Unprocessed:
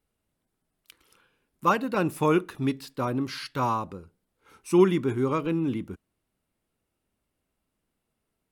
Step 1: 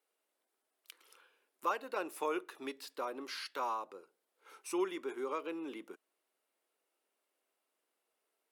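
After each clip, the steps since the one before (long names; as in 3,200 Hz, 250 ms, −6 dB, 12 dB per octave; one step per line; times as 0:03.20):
high-pass filter 390 Hz 24 dB per octave
downward compressor 1.5 to 1, threshold −48 dBFS, peak gain reduction 11 dB
level −1 dB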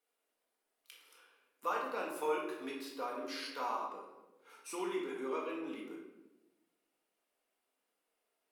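convolution reverb RT60 1.0 s, pre-delay 4 ms, DRR −3 dB
level −4.5 dB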